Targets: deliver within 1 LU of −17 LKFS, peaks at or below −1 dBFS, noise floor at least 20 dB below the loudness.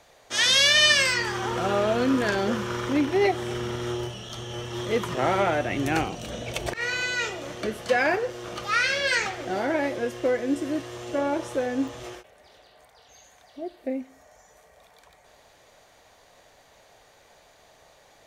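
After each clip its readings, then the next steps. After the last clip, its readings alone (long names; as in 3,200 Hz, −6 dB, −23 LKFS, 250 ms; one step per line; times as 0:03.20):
number of dropouts 2; longest dropout 4.6 ms; integrated loudness −24.5 LKFS; sample peak −5.5 dBFS; target loudness −17.0 LKFS
→ repair the gap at 0:04.29/0:11.88, 4.6 ms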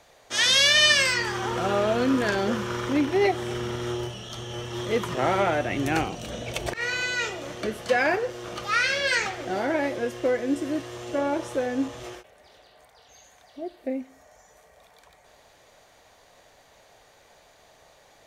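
number of dropouts 0; integrated loudness −24.5 LKFS; sample peak −5.5 dBFS; target loudness −17.0 LKFS
→ level +7.5 dB
brickwall limiter −1 dBFS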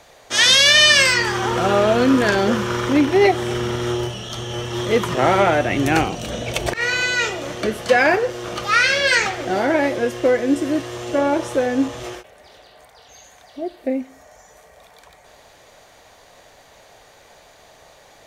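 integrated loudness −17.5 LKFS; sample peak −1.0 dBFS; background noise floor −49 dBFS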